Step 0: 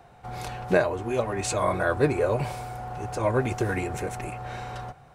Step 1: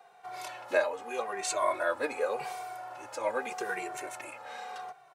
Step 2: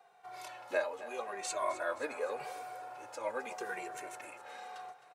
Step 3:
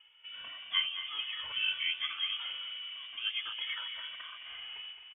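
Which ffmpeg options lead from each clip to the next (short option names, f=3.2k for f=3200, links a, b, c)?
-filter_complex "[0:a]highpass=580,asplit=2[a][b];[b]adelay=2.1,afreqshift=-0.84[c];[a][c]amix=inputs=2:normalize=1"
-af "aecho=1:1:262|524|786|1048|1310:0.178|0.096|0.0519|0.028|0.0151,volume=-6dB"
-af "aecho=1:1:216|432|648|864|1080:0.282|0.13|0.0596|0.0274|0.0126,lowpass=f=3.1k:t=q:w=0.5098,lowpass=f=3.1k:t=q:w=0.6013,lowpass=f=3.1k:t=q:w=0.9,lowpass=f=3.1k:t=q:w=2.563,afreqshift=-3700,volume=1.5dB"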